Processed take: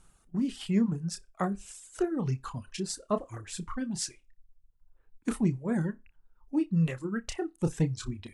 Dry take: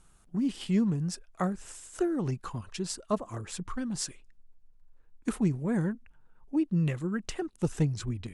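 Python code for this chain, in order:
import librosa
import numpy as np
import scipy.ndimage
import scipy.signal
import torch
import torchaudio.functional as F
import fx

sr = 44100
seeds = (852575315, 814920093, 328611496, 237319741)

y = fx.room_flutter(x, sr, wall_m=5.2, rt60_s=0.22)
y = fx.dereverb_blind(y, sr, rt60_s=1.1)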